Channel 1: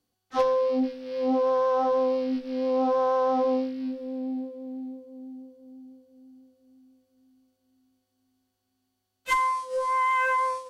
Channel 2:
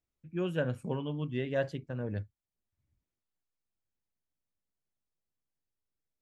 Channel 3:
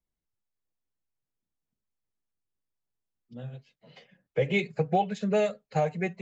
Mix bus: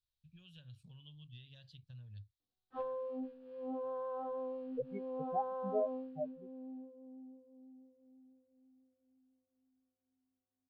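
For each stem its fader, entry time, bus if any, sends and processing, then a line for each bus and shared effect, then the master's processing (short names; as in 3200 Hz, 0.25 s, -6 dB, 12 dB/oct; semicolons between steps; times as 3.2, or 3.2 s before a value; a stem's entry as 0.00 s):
-16.5 dB, 2.40 s, no send, Gaussian blur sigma 3.3 samples
-4.5 dB, 0.00 s, no send, compressor 12:1, threshold -39 dBFS, peak gain reduction 14 dB; EQ curve 120 Hz 0 dB, 330 Hz -29 dB, 1500 Hz -16 dB, 3900 Hz +12 dB, 6800 Hz -6 dB
-11.0 dB, 0.40 s, no send, spectral expander 4:1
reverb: off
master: bell 2100 Hz -11.5 dB 0.33 oct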